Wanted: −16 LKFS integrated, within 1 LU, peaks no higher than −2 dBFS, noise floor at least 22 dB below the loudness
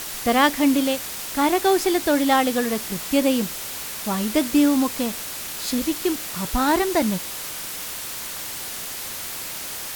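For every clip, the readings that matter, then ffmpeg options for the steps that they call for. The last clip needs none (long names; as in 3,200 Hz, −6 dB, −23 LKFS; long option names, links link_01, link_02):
background noise floor −32 dBFS; target noise floor −45 dBFS; integrated loudness −22.5 LKFS; sample peak −5.0 dBFS; target loudness −16.0 LKFS
→ -af "afftdn=noise_reduction=13:noise_floor=-32"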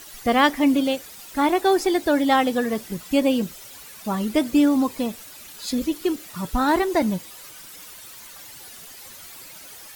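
background noise floor −42 dBFS; target noise floor −44 dBFS
→ -af "afftdn=noise_reduction=6:noise_floor=-42"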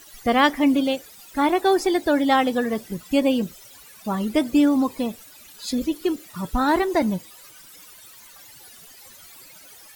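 background noise floor −47 dBFS; integrated loudness −22.0 LKFS; sample peak −6.0 dBFS; target loudness −16.0 LKFS
→ -af "volume=6dB,alimiter=limit=-2dB:level=0:latency=1"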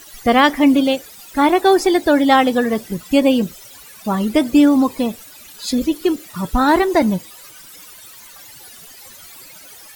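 integrated loudness −16.0 LKFS; sample peak −2.0 dBFS; background noise floor −41 dBFS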